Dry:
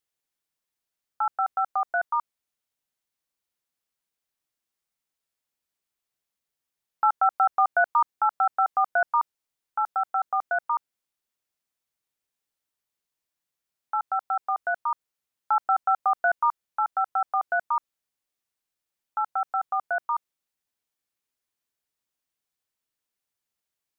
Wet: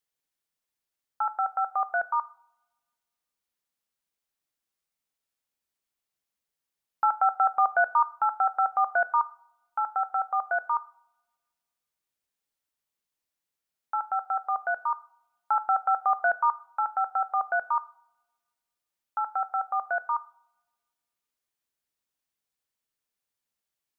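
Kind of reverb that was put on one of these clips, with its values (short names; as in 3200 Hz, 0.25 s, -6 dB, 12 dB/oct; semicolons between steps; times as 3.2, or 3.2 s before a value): two-slope reverb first 0.56 s, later 1.7 s, from -26 dB, DRR 14 dB; gain -1.5 dB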